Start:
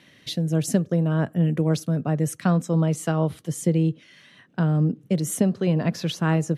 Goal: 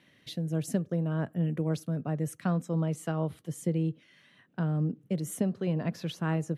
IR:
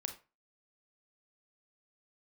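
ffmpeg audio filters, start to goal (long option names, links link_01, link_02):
-af "equalizer=frequency=5800:width=0.88:gain=-4.5,volume=-8dB"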